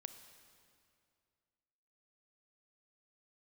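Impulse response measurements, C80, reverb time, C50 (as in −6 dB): 10.5 dB, 2.3 s, 9.5 dB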